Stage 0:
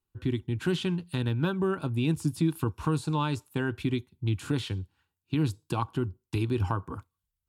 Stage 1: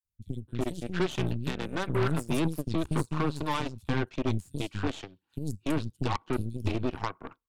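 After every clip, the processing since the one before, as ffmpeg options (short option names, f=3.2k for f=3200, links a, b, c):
-filter_complex "[0:a]aphaser=in_gain=1:out_gain=1:delay=4:decay=0.28:speed=1:type=sinusoidal,acrossover=split=190|5400[a][b][c];[a]adelay=40[d];[b]adelay=330[e];[d][e][c]amix=inputs=3:normalize=0,aeval=exprs='0.178*(cos(1*acos(clip(val(0)/0.178,-1,1)))-cos(1*PI/2))+0.0501*(cos(5*acos(clip(val(0)/0.178,-1,1)))-cos(5*PI/2))+0.0447*(cos(7*acos(clip(val(0)/0.178,-1,1)))-cos(7*PI/2))+0.0316*(cos(8*acos(clip(val(0)/0.178,-1,1)))-cos(8*PI/2))':c=same,volume=-3.5dB"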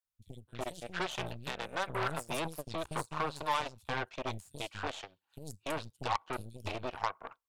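-af "lowshelf=f=440:t=q:w=1.5:g=-11,volume=-1.5dB"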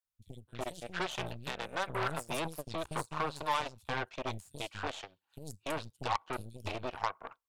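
-af anull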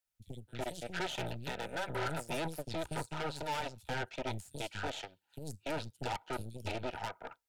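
-filter_complex "[0:a]acrossover=split=130|4300[a][b][c];[c]alimiter=level_in=14.5dB:limit=-24dB:level=0:latency=1:release=39,volume=-14.5dB[d];[a][b][d]amix=inputs=3:normalize=0,asoftclip=type=tanh:threshold=-33.5dB,asuperstop=centerf=1100:order=8:qfactor=5.1,volume=3dB"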